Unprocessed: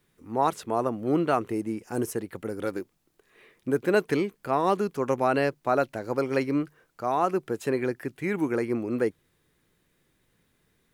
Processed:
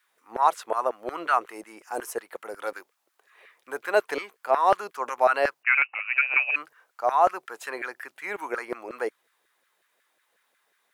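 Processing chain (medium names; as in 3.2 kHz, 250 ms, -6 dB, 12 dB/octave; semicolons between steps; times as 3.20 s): 5.63–6.56 s: frequency inversion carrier 2.8 kHz; LFO high-pass saw down 5.5 Hz 540–1600 Hz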